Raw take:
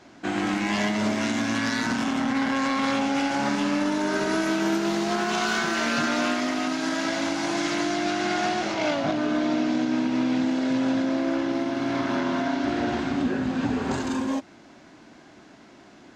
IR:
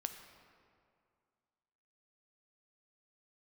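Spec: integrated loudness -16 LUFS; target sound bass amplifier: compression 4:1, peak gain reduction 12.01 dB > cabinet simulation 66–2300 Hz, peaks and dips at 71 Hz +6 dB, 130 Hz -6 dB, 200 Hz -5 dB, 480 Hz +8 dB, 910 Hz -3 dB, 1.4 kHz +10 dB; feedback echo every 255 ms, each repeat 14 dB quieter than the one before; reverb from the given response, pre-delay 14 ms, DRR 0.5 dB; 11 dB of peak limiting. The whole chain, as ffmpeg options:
-filter_complex "[0:a]alimiter=limit=0.0708:level=0:latency=1,aecho=1:1:255|510:0.2|0.0399,asplit=2[s0][s1];[1:a]atrim=start_sample=2205,adelay=14[s2];[s1][s2]afir=irnorm=-1:irlink=0,volume=1.12[s3];[s0][s3]amix=inputs=2:normalize=0,acompressor=threshold=0.0158:ratio=4,highpass=f=66:w=0.5412,highpass=f=66:w=1.3066,equalizer=f=71:t=q:w=4:g=6,equalizer=f=130:t=q:w=4:g=-6,equalizer=f=200:t=q:w=4:g=-5,equalizer=f=480:t=q:w=4:g=8,equalizer=f=910:t=q:w=4:g=-3,equalizer=f=1400:t=q:w=4:g=10,lowpass=f=2300:w=0.5412,lowpass=f=2300:w=1.3066,volume=10.6"

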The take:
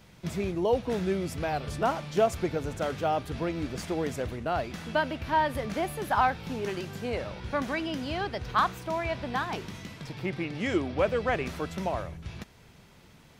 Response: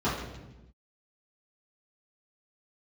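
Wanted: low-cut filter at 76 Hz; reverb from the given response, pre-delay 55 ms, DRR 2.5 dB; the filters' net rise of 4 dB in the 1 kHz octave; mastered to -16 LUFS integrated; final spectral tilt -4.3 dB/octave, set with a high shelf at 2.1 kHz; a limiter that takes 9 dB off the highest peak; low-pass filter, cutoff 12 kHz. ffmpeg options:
-filter_complex "[0:a]highpass=76,lowpass=12000,equalizer=f=1000:t=o:g=6.5,highshelf=f=2100:g=-7,alimiter=limit=0.119:level=0:latency=1,asplit=2[s0][s1];[1:a]atrim=start_sample=2205,adelay=55[s2];[s1][s2]afir=irnorm=-1:irlink=0,volume=0.178[s3];[s0][s3]amix=inputs=2:normalize=0,volume=3.76"

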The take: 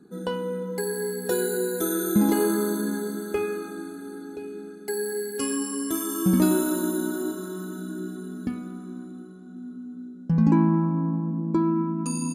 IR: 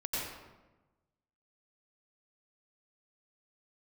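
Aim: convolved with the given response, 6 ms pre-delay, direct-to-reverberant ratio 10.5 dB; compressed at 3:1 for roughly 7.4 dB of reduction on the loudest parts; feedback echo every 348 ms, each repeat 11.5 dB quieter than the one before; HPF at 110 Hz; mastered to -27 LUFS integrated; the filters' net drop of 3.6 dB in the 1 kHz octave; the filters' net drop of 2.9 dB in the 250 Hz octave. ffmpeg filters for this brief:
-filter_complex "[0:a]highpass=110,equalizer=f=250:t=o:g=-3.5,equalizer=f=1000:t=o:g=-4,acompressor=threshold=0.0398:ratio=3,aecho=1:1:348|696|1044:0.266|0.0718|0.0194,asplit=2[s0][s1];[1:a]atrim=start_sample=2205,adelay=6[s2];[s1][s2]afir=irnorm=-1:irlink=0,volume=0.178[s3];[s0][s3]amix=inputs=2:normalize=0,volume=1.78"

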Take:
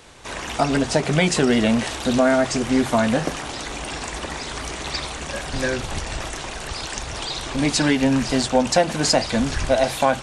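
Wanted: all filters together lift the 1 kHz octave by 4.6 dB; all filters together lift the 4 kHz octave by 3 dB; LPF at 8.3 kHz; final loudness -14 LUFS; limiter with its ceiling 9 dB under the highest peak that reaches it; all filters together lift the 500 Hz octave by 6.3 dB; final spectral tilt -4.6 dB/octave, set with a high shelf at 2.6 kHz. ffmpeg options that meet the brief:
-af "lowpass=8300,equalizer=f=500:t=o:g=7,equalizer=f=1000:t=o:g=3.5,highshelf=f=2600:g=-6,equalizer=f=4000:t=o:g=9,volume=2.11,alimiter=limit=0.891:level=0:latency=1"

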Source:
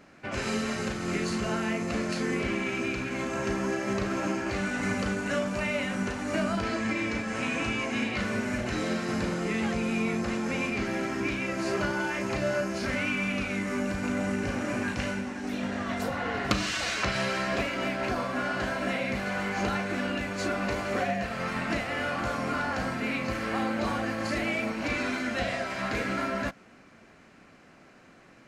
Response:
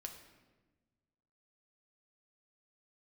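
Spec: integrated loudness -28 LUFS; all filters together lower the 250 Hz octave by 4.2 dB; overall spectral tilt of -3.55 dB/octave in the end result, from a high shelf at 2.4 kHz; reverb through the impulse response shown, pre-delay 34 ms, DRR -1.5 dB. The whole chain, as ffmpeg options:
-filter_complex "[0:a]equalizer=f=250:t=o:g=-5.5,highshelf=f=2400:g=5,asplit=2[s0][s1];[1:a]atrim=start_sample=2205,adelay=34[s2];[s1][s2]afir=irnorm=-1:irlink=0,volume=1.88[s3];[s0][s3]amix=inputs=2:normalize=0,volume=0.794"

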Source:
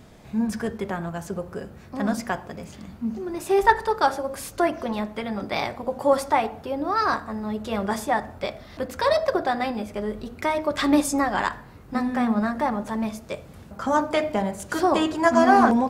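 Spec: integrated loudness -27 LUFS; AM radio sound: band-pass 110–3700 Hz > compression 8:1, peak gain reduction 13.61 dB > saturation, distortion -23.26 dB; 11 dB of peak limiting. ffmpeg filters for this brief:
-af "alimiter=limit=0.178:level=0:latency=1,highpass=110,lowpass=3700,acompressor=threshold=0.0251:ratio=8,asoftclip=threshold=0.0596,volume=3.35"

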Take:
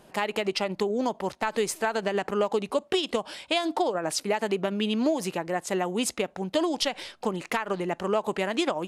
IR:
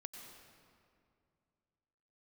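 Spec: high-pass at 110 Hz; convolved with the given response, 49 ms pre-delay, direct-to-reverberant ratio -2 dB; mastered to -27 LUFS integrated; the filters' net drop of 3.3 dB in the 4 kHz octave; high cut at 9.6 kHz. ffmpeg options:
-filter_complex "[0:a]highpass=110,lowpass=9600,equalizer=f=4000:t=o:g=-4.5,asplit=2[s0][s1];[1:a]atrim=start_sample=2205,adelay=49[s2];[s1][s2]afir=irnorm=-1:irlink=0,volume=2[s3];[s0][s3]amix=inputs=2:normalize=0,volume=0.75"

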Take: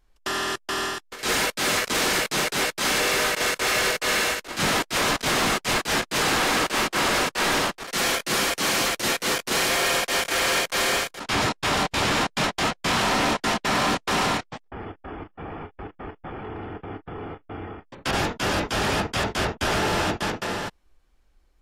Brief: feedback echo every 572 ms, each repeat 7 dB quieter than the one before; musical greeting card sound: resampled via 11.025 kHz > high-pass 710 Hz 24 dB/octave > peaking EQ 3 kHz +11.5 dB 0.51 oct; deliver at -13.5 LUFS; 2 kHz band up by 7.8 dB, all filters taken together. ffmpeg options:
-af "equalizer=f=2000:t=o:g=6,aecho=1:1:572|1144|1716|2288|2860:0.447|0.201|0.0905|0.0407|0.0183,aresample=11025,aresample=44100,highpass=f=710:w=0.5412,highpass=f=710:w=1.3066,equalizer=f=3000:t=o:w=0.51:g=11.5,volume=1.33"

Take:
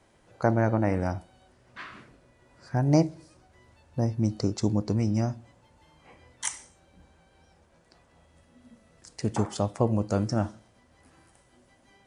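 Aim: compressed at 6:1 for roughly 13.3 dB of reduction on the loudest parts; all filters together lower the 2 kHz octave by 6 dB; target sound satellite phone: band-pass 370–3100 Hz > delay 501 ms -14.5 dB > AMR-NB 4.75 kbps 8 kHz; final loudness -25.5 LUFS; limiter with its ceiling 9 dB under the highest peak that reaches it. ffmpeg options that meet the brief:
-af "equalizer=f=2000:t=o:g=-8,acompressor=threshold=0.0282:ratio=6,alimiter=level_in=1.5:limit=0.0631:level=0:latency=1,volume=0.668,highpass=370,lowpass=3100,aecho=1:1:501:0.188,volume=14.1" -ar 8000 -c:a libopencore_amrnb -b:a 4750

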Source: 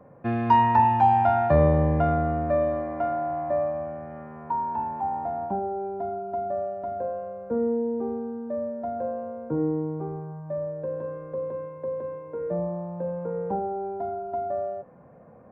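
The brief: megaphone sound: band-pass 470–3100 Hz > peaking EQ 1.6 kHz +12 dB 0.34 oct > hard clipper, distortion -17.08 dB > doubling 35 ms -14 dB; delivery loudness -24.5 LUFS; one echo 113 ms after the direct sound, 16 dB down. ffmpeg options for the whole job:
-filter_complex "[0:a]highpass=470,lowpass=3100,equalizer=f=1600:t=o:w=0.34:g=12,aecho=1:1:113:0.158,asoftclip=type=hard:threshold=0.158,asplit=2[s0][s1];[s1]adelay=35,volume=0.2[s2];[s0][s2]amix=inputs=2:normalize=0,volume=1.68"

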